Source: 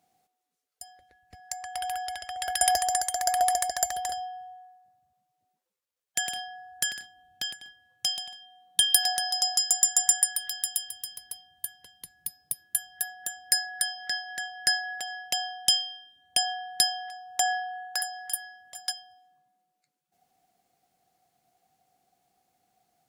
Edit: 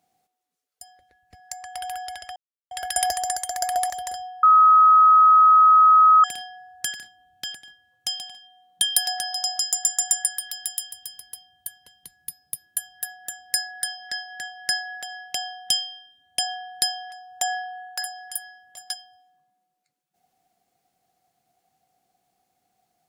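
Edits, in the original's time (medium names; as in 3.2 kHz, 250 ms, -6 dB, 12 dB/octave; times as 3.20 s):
2.36 s: insert silence 0.35 s
3.55–3.88 s: delete
4.41–6.22 s: bleep 1.27 kHz -10 dBFS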